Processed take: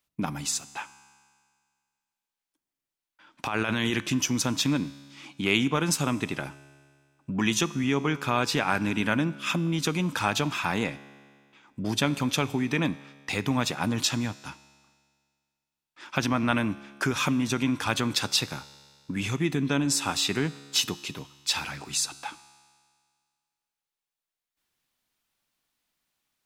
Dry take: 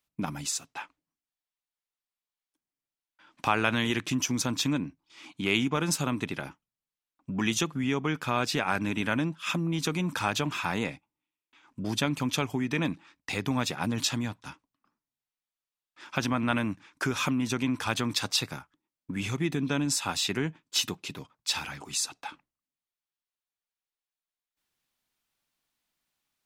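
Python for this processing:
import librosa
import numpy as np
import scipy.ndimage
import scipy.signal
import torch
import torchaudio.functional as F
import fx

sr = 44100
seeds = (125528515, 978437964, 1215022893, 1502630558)

y = fx.over_compress(x, sr, threshold_db=-30.0, ratio=-1.0, at=(3.46, 3.95))
y = fx.comb_fb(y, sr, f0_hz=70.0, decay_s=1.9, harmonics='all', damping=0.0, mix_pct=50)
y = y * 10.0 ** (8.0 / 20.0)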